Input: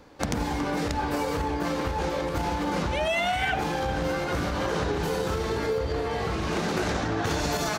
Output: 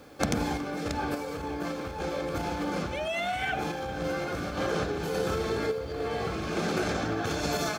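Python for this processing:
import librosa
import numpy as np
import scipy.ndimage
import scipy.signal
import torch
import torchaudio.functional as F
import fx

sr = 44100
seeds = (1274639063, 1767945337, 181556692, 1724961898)

y = fx.rider(x, sr, range_db=10, speed_s=0.5)
y = fx.tremolo_random(y, sr, seeds[0], hz=3.5, depth_pct=55)
y = fx.dmg_noise_colour(y, sr, seeds[1], colour='pink', level_db=-60.0)
y = fx.notch_comb(y, sr, f0_hz=960.0)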